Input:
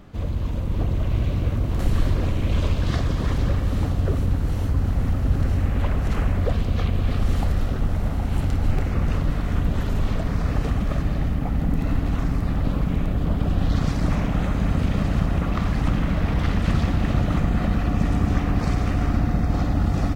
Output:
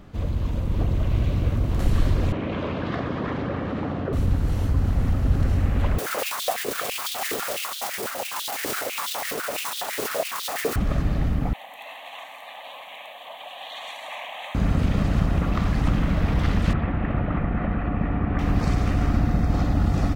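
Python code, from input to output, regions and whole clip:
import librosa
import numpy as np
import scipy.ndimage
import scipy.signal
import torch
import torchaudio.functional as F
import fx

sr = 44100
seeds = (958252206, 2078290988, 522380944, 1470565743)

y = fx.chain(x, sr, fx.bandpass_edges(low_hz=210.0, high_hz=2200.0),
    fx.overload_stage(gain_db=18.0),
    fx.env_flatten(amount_pct=70), at=(2.32, 4.13))
y = fx.chain(y, sr, fx.mod_noise(seeds[0], snr_db=13),
    fx.filter_held_highpass(hz=12.0, low_hz=410.0, high_hz=3500.0), at=(5.98, 10.76))
y = fx.chain(y, sr, fx.highpass(hz=610.0, slope=24),
    fx.peak_eq(hz=3500.0, db=10.0, octaves=0.79),
    fx.fixed_phaser(hz=1400.0, stages=6), at=(11.53, 14.55))
y = fx.chain(y, sr, fx.lowpass(hz=2400.0, slope=24),
    fx.low_shelf(hz=230.0, db=-5.0), at=(16.73, 18.39))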